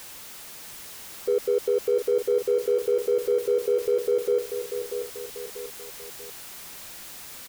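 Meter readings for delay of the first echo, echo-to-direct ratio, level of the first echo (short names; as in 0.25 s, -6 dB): 0.639 s, -7.0 dB, -8.0 dB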